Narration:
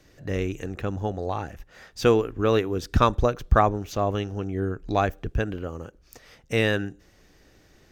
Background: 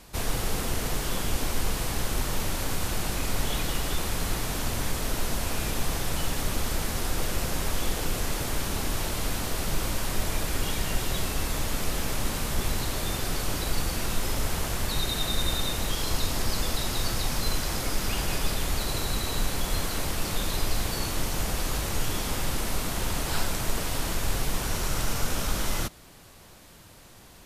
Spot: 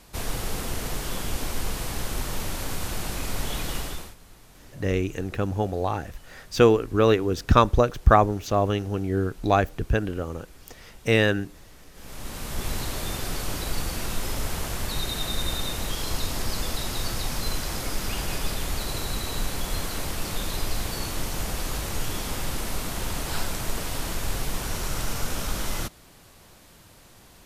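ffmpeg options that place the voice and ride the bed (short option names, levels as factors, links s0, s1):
-filter_complex "[0:a]adelay=4550,volume=1.33[s0];[1:a]volume=9.44,afade=t=out:st=3.78:d=0.37:silence=0.0944061,afade=t=in:st=11.93:d=0.82:silence=0.0891251[s1];[s0][s1]amix=inputs=2:normalize=0"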